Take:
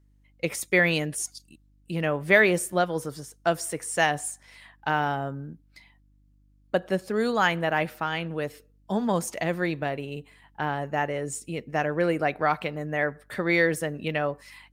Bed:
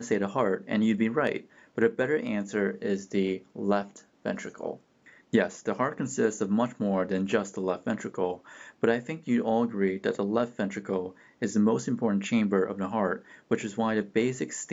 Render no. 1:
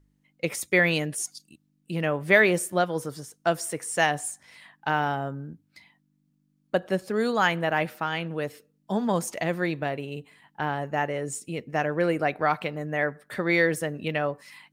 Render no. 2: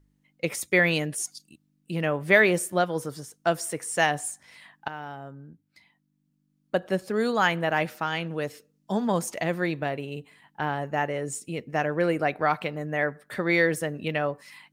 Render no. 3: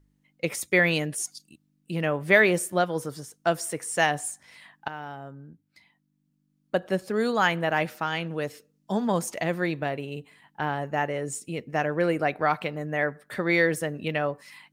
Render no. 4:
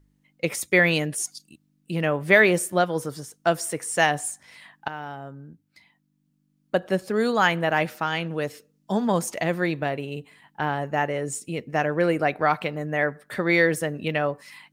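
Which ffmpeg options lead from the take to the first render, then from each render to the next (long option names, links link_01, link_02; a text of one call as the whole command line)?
ffmpeg -i in.wav -af "bandreject=frequency=50:width_type=h:width=4,bandreject=frequency=100:width_type=h:width=4" out.wav
ffmpeg -i in.wav -filter_complex "[0:a]asettb=1/sr,asplit=3[link_01][link_02][link_03];[link_01]atrim=end=7.704[link_04];[link_02]atrim=start=7.7:end=9,asetpts=PTS-STARTPTS,afade=type=in:duration=0.004:curve=qsin,afade=type=out:start_time=1.296:duration=0.004:curve=qsin,equalizer=frequency=6100:width_type=o:width=0.91:gain=5[link_05];[link_03]atrim=start=8.996[link_06];[link_04][link_05]acrossfade=duration=0.004:curve1=hsin:curve2=qsin[link_07];[link_07][link_06]acrossfade=duration=0.004:curve1=qsin:curve2=hsin,asplit=2[link_08][link_09];[link_08]atrim=end=4.88,asetpts=PTS-STARTPTS,afade=type=out:start_time=4.876:duration=0.004:curve=hsin:silence=0.188365[link_10];[link_09]atrim=start=4.88,asetpts=PTS-STARTPTS,afade=type=in:duration=2.11:silence=0.188365[link_11];[link_10][link_11]concat=n=2:v=0:a=1" out.wav
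ffmpeg -i in.wav -af anull out.wav
ffmpeg -i in.wav -af "volume=2.5dB,alimiter=limit=-3dB:level=0:latency=1" out.wav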